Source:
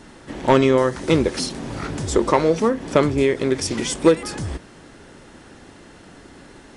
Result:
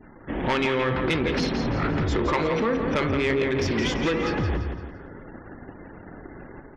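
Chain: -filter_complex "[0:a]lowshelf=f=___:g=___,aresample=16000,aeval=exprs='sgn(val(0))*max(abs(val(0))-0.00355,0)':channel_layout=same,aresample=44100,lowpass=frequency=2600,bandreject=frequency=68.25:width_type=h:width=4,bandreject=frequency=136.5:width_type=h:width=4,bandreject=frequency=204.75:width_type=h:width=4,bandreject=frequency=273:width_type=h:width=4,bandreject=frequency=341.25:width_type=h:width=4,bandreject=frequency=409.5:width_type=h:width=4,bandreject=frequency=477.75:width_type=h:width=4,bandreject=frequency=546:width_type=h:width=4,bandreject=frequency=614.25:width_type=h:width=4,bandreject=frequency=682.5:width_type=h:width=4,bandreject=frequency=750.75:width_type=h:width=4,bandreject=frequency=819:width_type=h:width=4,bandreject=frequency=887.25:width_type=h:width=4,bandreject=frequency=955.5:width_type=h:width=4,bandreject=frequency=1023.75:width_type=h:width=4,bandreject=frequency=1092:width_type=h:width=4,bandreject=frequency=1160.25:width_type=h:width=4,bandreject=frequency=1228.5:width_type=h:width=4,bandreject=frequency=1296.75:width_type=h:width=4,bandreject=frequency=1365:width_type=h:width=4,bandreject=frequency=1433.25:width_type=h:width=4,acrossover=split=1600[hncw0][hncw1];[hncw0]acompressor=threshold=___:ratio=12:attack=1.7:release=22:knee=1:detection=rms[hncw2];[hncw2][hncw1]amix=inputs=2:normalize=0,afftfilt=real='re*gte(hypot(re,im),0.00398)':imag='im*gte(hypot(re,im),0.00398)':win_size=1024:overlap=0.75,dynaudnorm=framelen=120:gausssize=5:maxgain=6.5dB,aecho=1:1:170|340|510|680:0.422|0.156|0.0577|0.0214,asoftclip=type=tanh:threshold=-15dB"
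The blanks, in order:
110, 3.5, -27dB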